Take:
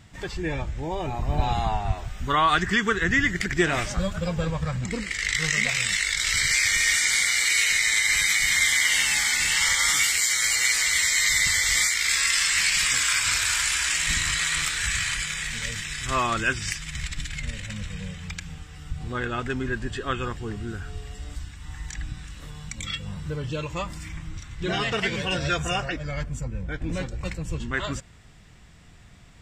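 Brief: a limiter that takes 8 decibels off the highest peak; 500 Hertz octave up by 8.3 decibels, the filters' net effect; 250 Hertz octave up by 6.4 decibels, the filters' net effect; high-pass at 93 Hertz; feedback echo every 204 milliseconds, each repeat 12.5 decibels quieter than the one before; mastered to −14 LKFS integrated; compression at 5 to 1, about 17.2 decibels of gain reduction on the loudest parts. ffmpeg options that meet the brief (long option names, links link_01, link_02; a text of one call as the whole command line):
ffmpeg -i in.wav -af "highpass=93,equalizer=frequency=250:width_type=o:gain=6.5,equalizer=frequency=500:width_type=o:gain=8.5,acompressor=threshold=-31dB:ratio=5,alimiter=limit=-24dB:level=0:latency=1,aecho=1:1:204|408|612:0.237|0.0569|0.0137,volume=19.5dB" out.wav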